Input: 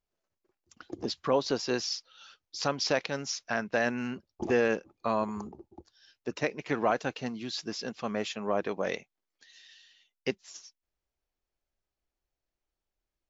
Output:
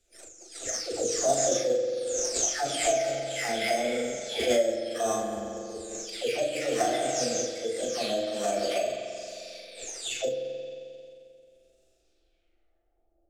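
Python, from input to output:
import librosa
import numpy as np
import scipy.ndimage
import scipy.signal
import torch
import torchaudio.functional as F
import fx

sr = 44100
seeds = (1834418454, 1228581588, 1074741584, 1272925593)

p1 = fx.spec_delay(x, sr, highs='early', ms=624)
p2 = fx.low_shelf(p1, sr, hz=350.0, db=4.0)
p3 = fx.sample_hold(p2, sr, seeds[0], rate_hz=5700.0, jitter_pct=0)
p4 = p2 + F.gain(torch.from_numpy(p3), -7.5).numpy()
p5 = fx.high_shelf(p4, sr, hz=4100.0, db=10.5)
p6 = fx.fixed_phaser(p5, sr, hz=410.0, stages=4)
p7 = fx.rev_spring(p6, sr, rt60_s=1.8, pass_ms=(44,), chirp_ms=25, drr_db=2.0)
p8 = fx.filter_sweep_lowpass(p7, sr, from_hz=5800.0, to_hz=660.0, start_s=11.91, end_s=13.11, q=1.6)
p9 = fx.formant_shift(p8, sr, semitones=4)
p10 = fx.doubler(p9, sr, ms=38.0, db=-4.5)
y = fx.band_squash(p10, sr, depth_pct=40)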